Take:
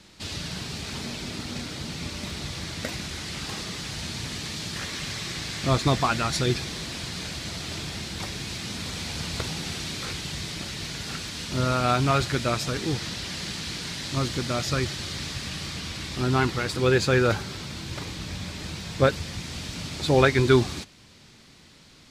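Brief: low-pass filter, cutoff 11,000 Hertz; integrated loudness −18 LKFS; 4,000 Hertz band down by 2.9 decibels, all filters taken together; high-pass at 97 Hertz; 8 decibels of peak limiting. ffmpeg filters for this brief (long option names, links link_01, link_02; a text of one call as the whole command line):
ffmpeg -i in.wav -af "highpass=97,lowpass=11000,equalizer=frequency=4000:width_type=o:gain=-3.5,volume=12dB,alimiter=limit=-2dB:level=0:latency=1" out.wav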